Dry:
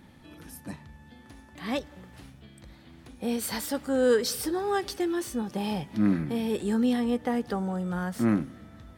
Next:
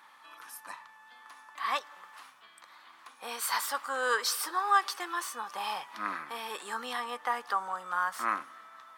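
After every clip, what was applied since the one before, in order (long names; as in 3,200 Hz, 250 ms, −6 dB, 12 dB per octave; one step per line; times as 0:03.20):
high-pass with resonance 1,100 Hz, resonance Q 4.9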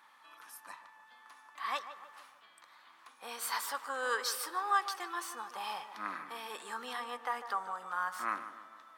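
tape delay 150 ms, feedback 55%, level −10 dB, low-pass 1,800 Hz
level −5 dB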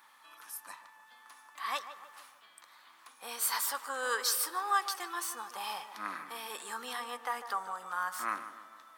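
high-shelf EQ 5,900 Hz +10.5 dB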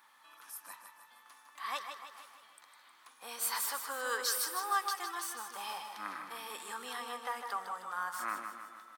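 repeating echo 156 ms, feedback 52%, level −8 dB
level −3 dB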